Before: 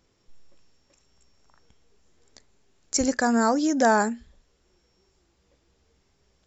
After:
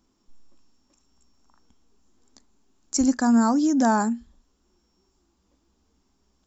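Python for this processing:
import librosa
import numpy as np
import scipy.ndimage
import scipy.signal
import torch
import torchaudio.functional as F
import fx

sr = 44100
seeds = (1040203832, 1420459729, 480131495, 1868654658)

y = fx.graphic_eq(x, sr, hz=(125, 250, 500, 1000, 2000, 4000), db=(-11, 10, -10, 4, -9, -3))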